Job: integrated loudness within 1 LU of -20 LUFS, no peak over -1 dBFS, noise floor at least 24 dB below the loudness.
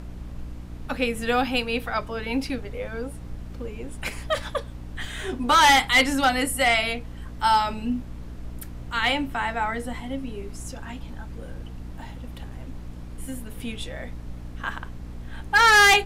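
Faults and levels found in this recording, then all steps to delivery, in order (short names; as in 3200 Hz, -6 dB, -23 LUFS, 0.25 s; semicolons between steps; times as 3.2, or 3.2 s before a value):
hum 60 Hz; harmonics up to 300 Hz; hum level -36 dBFS; noise floor -38 dBFS; noise floor target -47 dBFS; loudness -23.0 LUFS; peak -5.5 dBFS; loudness target -20.0 LUFS
-> notches 60/120/180/240/300 Hz; noise print and reduce 9 dB; gain +3 dB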